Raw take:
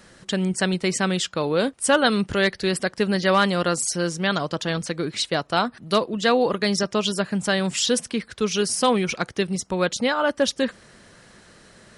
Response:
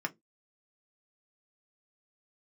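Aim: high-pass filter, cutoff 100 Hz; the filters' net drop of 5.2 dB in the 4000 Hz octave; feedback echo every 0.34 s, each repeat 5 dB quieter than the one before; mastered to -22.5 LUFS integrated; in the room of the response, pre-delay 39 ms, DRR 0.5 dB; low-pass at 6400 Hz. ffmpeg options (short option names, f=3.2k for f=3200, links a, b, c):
-filter_complex "[0:a]highpass=100,lowpass=6.4k,equalizer=f=4k:t=o:g=-6,aecho=1:1:340|680|1020|1360|1700|2040|2380:0.562|0.315|0.176|0.0988|0.0553|0.031|0.0173,asplit=2[a][b];[1:a]atrim=start_sample=2205,adelay=39[c];[b][c]afir=irnorm=-1:irlink=0,volume=-4.5dB[d];[a][d]amix=inputs=2:normalize=0,volume=-3dB"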